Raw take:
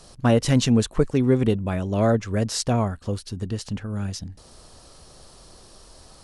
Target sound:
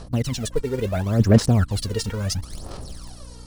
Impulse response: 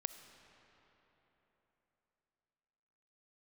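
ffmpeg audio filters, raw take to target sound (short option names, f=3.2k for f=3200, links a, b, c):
-filter_complex "[0:a]areverse,acompressor=threshold=-28dB:ratio=5,areverse,atempo=1.8,dynaudnorm=f=200:g=7:m=4.5dB,asplit=2[a][b];[b]acrusher=bits=5:mix=0:aa=0.000001,volume=-9dB[c];[a][c]amix=inputs=2:normalize=0,aphaser=in_gain=1:out_gain=1:delay=2.2:decay=0.74:speed=0.73:type=sinusoidal,aeval=exprs='val(0)+0.00891*(sin(2*PI*60*n/s)+sin(2*PI*2*60*n/s)/2+sin(2*PI*3*60*n/s)/3+sin(2*PI*4*60*n/s)/4+sin(2*PI*5*60*n/s)/5)':c=same"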